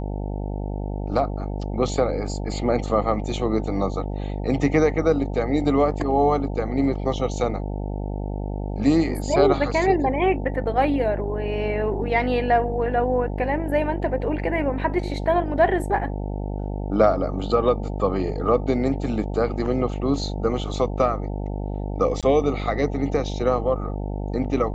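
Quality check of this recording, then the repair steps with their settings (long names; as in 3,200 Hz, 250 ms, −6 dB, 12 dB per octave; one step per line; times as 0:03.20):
mains buzz 50 Hz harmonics 18 −28 dBFS
0:22.21–0:22.23: drop-out 17 ms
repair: hum removal 50 Hz, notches 18
repair the gap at 0:22.21, 17 ms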